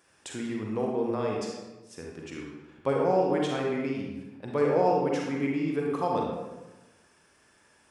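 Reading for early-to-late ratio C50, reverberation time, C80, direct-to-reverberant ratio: 0.5 dB, 1.1 s, 3.0 dB, −1.5 dB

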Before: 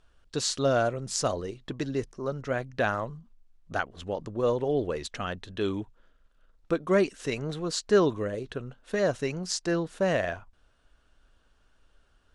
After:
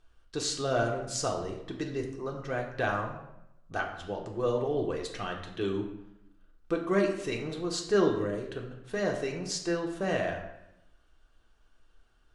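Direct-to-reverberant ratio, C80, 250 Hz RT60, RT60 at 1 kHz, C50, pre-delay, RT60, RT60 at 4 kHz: 0.0 dB, 9.0 dB, 1.0 s, 0.85 s, 6.5 dB, 3 ms, 0.85 s, 0.60 s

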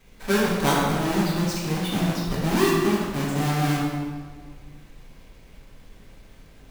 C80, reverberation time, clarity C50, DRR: 1.5 dB, 1.7 s, −0.5 dB, −6.5 dB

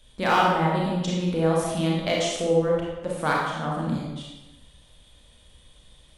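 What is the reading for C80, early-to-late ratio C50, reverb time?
2.5 dB, −0.5 dB, 1.1 s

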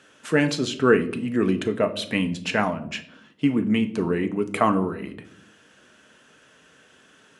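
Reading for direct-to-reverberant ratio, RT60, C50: 6.5 dB, 0.65 s, 15.0 dB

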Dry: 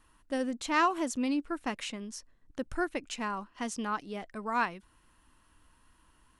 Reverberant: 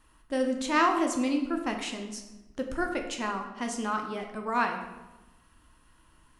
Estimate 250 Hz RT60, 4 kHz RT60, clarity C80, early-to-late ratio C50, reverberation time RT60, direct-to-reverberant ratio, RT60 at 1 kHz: 1.3 s, 0.70 s, 9.0 dB, 7.0 dB, 1.1 s, 3.0 dB, 1.1 s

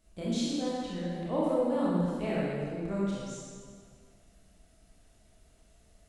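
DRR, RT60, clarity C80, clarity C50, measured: −7.5 dB, 1.9 s, −1.0 dB, −3.5 dB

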